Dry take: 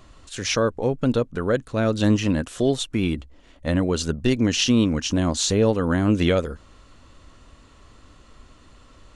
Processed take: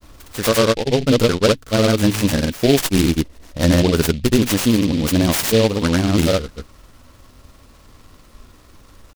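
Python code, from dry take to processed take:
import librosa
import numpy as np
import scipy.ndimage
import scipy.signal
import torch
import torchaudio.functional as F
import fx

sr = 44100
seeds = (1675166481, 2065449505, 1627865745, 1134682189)

y = fx.rider(x, sr, range_db=10, speed_s=0.5)
y = fx.granulator(y, sr, seeds[0], grain_ms=100.0, per_s=20.0, spray_ms=100.0, spread_st=0)
y = fx.noise_mod_delay(y, sr, seeds[1], noise_hz=3200.0, depth_ms=0.088)
y = y * librosa.db_to_amplitude(6.5)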